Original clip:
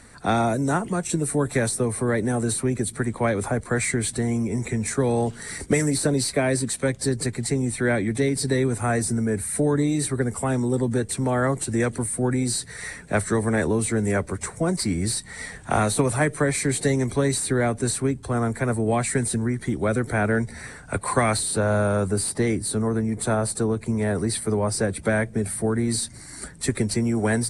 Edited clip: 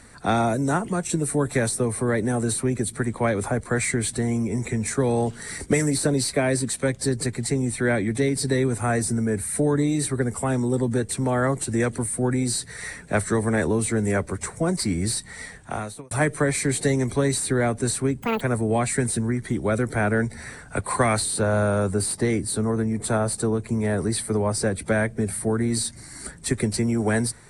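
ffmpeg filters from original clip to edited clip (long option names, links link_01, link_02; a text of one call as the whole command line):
ffmpeg -i in.wav -filter_complex "[0:a]asplit=4[link_01][link_02][link_03][link_04];[link_01]atrim=end=16.11,asetpts=PTS-STARTPTS,afade=type=out:start_time=15.21:duration=0.9[link_05];[link_02]atrim=start=16.11:end=18.224,asetpts=PTS-STARTPTS,afade=type=in:duration=0.004:curve=hsin[link_06];[link_03]atrim=start=18.22:end=18.58,asetpts=PTS-STARTPTS,asetrate=84672,aresample=44100[link_07];[link_04]atrim=start=18.576[link_08];[link_05][link_06]concat=n=2:v=0:a=1[link_09];[link_09][link_07]acrossfade=duration=0.004:curve1=hsin:curve2=hsin[link_10];[link_10][link_08]acrossfade=duration=0.004:curve1=hsin:curve2=hsin" out.wav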